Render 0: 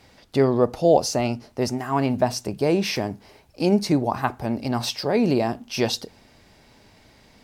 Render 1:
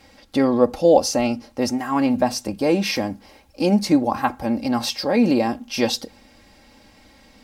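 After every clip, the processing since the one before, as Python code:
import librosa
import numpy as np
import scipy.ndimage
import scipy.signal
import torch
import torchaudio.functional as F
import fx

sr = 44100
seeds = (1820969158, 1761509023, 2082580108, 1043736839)

y = x + 0.66 * np.pad(x, (int(3.7 * sr / 1000.0), 0))[:len(x)]
y = F.gain(torch.from_numpy(y), 1.0).numpy()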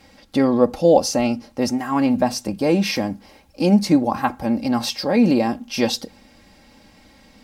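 y = fx.peak_eq(x, sr, hz=170.0, db=5.0, octaves=0.72)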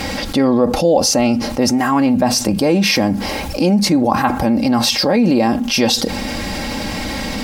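y = fx.env_flatten(x, sr, amount_pct=70)
y = F.gain(torch.from_numpy(y), -1.0).numpy()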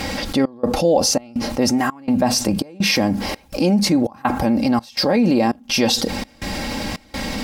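y = fx.step_gate(x, sr, bpm=166, pattern='xxxxx..x', floor_db=-24.0, edge_ms=4.5)
y = F.gain(torch.from_numpy(y), -2.5).numpy()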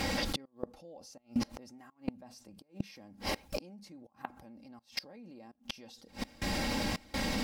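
y = fx.quant_dither(x, sr, seeds[0], bits=12, dither='none')
y = fx.gate_flip(y, sr, shuts_db=-13.0, range_db=-28)
y = F.gain(torch.from_numpy(y), -7.5).numpy()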